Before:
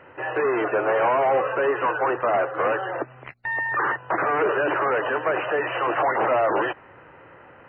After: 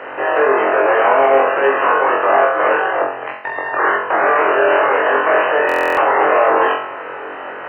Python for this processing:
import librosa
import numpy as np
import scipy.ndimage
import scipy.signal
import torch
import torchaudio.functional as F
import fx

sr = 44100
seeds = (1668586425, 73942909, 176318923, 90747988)

y = fx.bin_compress(x, sr, power=0.6)
y = fx.highpass(y, sr, hz=130.0, slope=6)
y = fx.bass_treble(y, sr, bass_db=-8, treble_db=0)
y = fx.hum_notches(y, sr, base_hz=60, count=6)
y = fx.doubler(y, sr, ms=49.0, db=-9.0)
y = fx.room_flutter(y, sr, wall_m=3.8, rt60_s=0.53)
y = fx.buffer_glitch(y, sr, at_s=(5.67,), block=1024, repeats=12)
y = F.gain(torch.from_numpy(y), 1.5).numpy()